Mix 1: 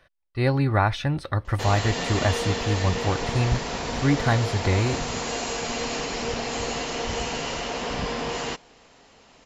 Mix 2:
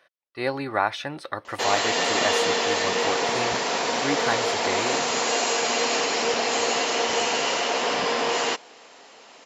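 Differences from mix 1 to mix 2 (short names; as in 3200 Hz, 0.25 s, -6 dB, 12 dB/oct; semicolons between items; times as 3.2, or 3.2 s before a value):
background +6.5 dB; master: add HPF 370 Hz 12 dB/oct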